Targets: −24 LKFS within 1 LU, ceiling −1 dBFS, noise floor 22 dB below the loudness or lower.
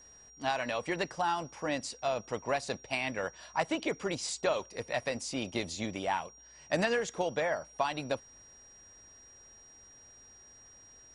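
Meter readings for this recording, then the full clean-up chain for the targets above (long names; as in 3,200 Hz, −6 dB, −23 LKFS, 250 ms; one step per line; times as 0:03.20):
interfering tone 5,700 Hz; level of the tone −54 dBFS; integrated loudness −34.0 LKFS; sample peak −15.0 dBFS; target loudness −24.0 LKFS
→ notch filter 5,700 Hz, Q 30
level +10 dB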